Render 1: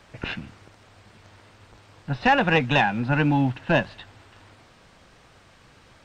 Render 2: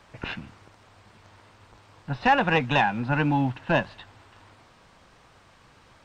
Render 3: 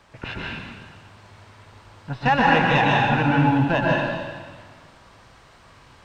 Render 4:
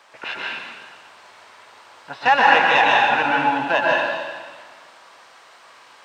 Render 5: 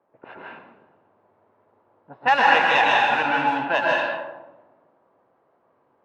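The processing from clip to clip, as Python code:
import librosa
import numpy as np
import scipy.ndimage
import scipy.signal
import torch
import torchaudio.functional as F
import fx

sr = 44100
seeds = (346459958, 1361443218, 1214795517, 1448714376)

y1 = fx.peak_eq(x, sr, hz=1000.0, db=4.5, octaves=0.73)
y1 = y1 * 10.0 ** (-3.0 / 20.0)
y2 = fx.rev_plate(y1, sr, seeds[0], rt60_s=1.5, hf_ratio=0.95, predelay_ms=110, drr_db=-3.5)
y3 = scipy.signal.sosfilt(scipy.signal.butter(2, 580.0, 'highpass', fs=sr, output='sos'), y2)
y3 = y3 * 10.0 ** (5.0 / 20.0)
y4 = fx.env_lowpass(y3, sr, base_hz=380.0, full_db=-13.0)
y4 = y4 * 10.0 ** (-2.5 / 20.0)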